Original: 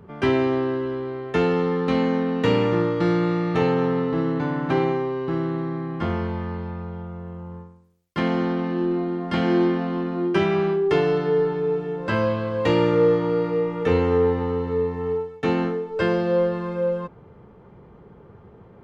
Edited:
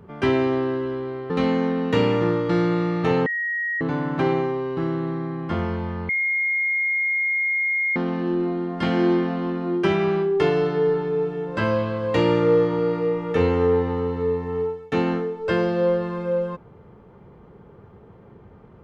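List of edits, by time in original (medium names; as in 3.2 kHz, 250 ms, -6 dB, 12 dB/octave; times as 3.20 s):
1.30–1.81 s: delete
3.77–4.32 s: bleep 1.89 kHz -22.5 dBFS
6.60–8.47 s: bleep 2.14 kHz -19.5 dBFS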